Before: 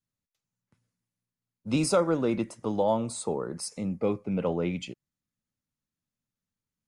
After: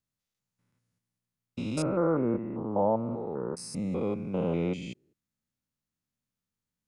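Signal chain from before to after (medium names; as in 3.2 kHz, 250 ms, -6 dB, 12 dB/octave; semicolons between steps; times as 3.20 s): spectrogram pixelated in time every 200 ms; 1.82–3.57 s: inverse Chebyshev low-pass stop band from 5.6 kHz, stop band 60 dB; trim +1.5 dB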